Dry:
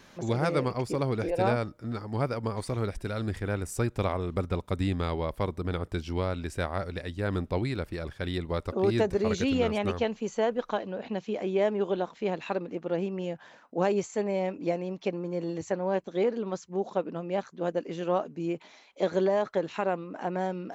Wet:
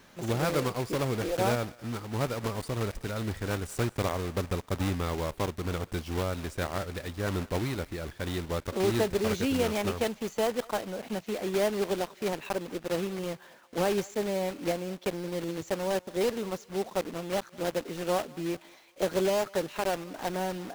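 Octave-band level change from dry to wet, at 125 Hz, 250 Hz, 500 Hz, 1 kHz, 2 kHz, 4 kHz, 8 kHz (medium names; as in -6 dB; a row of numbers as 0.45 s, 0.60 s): -1.5 dB, -1.5 dB, -1.5 dB, -1.0 dB, +1.0 dB, +4.0 dB, +6.5 dB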